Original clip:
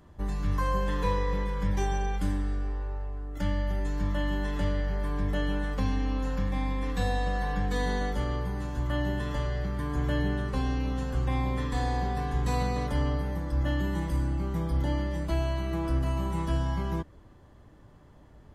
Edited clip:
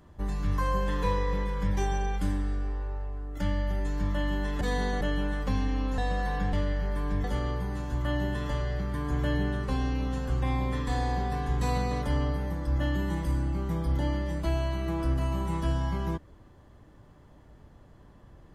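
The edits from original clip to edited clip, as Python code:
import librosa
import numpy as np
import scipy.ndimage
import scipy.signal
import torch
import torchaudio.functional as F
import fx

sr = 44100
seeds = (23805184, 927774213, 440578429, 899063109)

y = fx.edit(x, sr, fx.swap(start_s=4.61, length_s=0.71, other_s=7.69, other_length_s=0.4),
    fx.cut(start_s=6.29, length_s=0.85), tone=tone)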